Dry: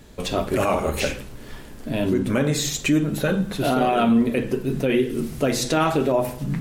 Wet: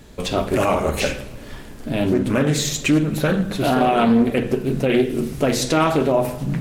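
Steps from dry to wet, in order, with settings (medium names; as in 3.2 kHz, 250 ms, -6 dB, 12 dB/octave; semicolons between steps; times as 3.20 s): on a send at -16 dB: reverberation RT60 1.5 s, pre-delay 16 ms; on the sum: loudspeaker Doppler distortion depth 0.28 ms; trim +2.5 dB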